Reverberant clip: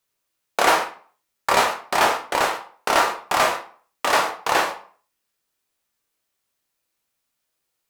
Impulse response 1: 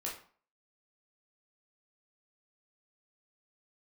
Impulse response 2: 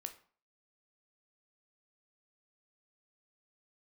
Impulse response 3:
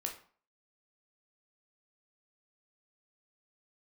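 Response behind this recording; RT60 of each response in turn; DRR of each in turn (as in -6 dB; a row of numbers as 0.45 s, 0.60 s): 3; 0.45 s, 0.45 s, 0.45 s; -4.5 dB, 6.5 dB, 1.5 dB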